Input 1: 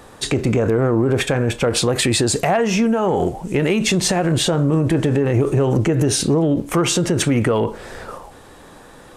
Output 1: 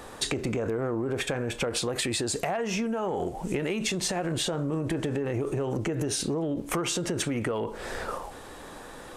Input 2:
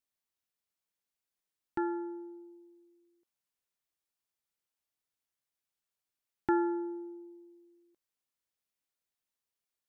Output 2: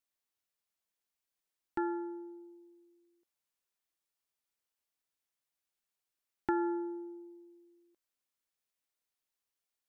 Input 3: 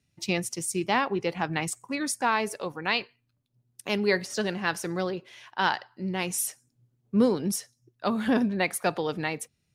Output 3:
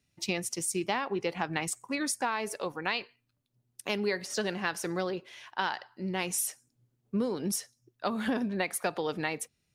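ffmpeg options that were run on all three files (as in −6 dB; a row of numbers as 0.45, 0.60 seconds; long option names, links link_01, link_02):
-af "equalizer=frequency=120:width=0.75:gain=-5,acompressor=threshold=-26dB:ratio=10"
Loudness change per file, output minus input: −11.5, −2.0, −4.5 LU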